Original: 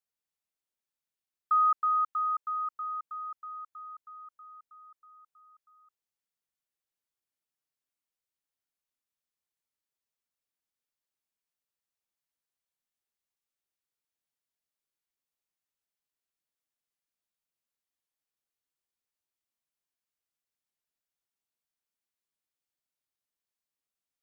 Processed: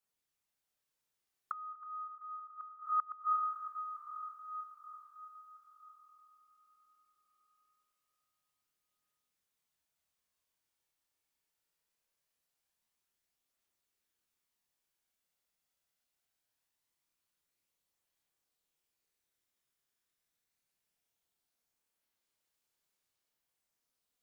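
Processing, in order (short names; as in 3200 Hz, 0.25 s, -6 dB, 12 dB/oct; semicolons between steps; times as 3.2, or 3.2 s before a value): swelling echo 97 ms, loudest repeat 5, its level -11.5 dB; chorus voices 2, 0.11 Hz, delay 29 ms, depth 1.6 ms; flipped gate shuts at -30 dBFS, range -25 dB; gain +6.5 dB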